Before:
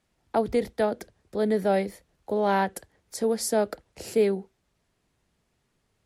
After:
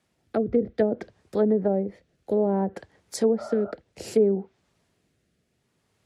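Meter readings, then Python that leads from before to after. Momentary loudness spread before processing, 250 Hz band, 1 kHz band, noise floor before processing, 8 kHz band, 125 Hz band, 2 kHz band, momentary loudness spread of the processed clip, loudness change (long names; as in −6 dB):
12 LU, +4.0 dB, −7.0 dB, −74 dBFS, −6.0 dB, can't be measured, −9.0 dB, 11 LU, +1.0 dB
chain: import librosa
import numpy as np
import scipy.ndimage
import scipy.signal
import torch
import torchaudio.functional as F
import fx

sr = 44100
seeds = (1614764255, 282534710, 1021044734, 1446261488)

y = fx.spec_repair(x, sr, seeds[0], start_s=3.41, length_s=0.28, low_hz=580.0, high_hz=1500.0, source='after')
y = fx.env_lowpass_down(y, sr, base_hz=470.0, full_db=-19.5)
y = scipy.signal.sosfilt(scipy.signal.butter(2, 80.0, 'highpass', fs=sr, output='sos'), y)
y = fx.rotary(y, sr, hz=0.6)
y = y * librosa.db_to_amplitude(5.5)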